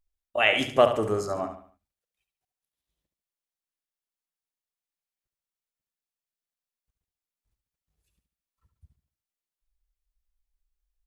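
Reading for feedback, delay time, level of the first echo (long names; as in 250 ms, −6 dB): 38%, 71 ms, −9.0 dB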